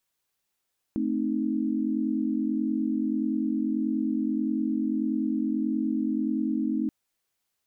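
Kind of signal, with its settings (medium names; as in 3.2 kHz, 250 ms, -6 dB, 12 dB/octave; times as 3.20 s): chord A3/C4/D#4 sine, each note -28.5 dBFS 5.93 s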